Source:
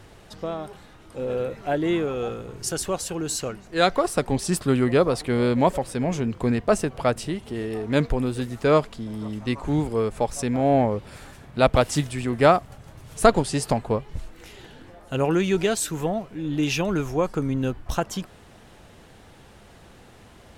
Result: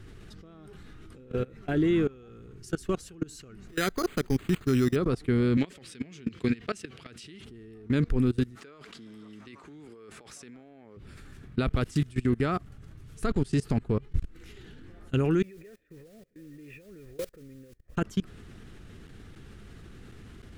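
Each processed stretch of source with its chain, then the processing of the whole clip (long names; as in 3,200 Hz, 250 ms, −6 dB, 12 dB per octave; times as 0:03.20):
0:03.68–0:04.96: low-shelf EQ 440 Hz −4.5 dB + bad sample-rate conversion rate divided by 8×, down none, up hold
0:05.57–0:07.45: meter weighting curve D + downward compressor 4 to 1, threshold −23 dBFS + high-pass filter 49 Hz
0:08.55–0:10.97: meter weighting curve A + compressor whose output falls as the input rises −34 dBFS
0:15.42–0:17.97: formant resonators in series e + noise that follows the level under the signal 14 dB
whole clip: spectral tilt −1.5 dB per octave; output level in coarse steps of 24 dB; flat-topped bell 720 Hz −11 dB 1.2 octaves; level +1.5 dB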